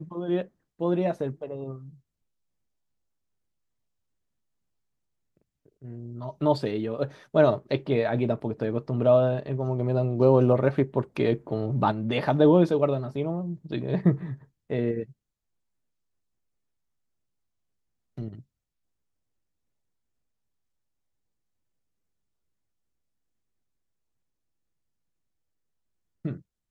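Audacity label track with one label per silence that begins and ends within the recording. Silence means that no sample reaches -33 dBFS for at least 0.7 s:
1.760000	5.850000	silence
15.030000	18.180000	silence
18.330000	26.250000	silence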